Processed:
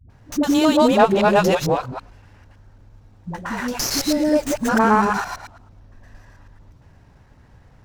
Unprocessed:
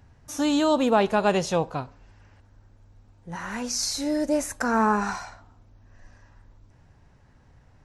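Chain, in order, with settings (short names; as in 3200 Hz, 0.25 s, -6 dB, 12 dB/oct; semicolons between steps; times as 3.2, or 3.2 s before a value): local time reversal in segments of 0.112 s; dispersion highs, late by 97 ms, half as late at 350 Hz; running maximum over 3 samples; gain +6.5 dB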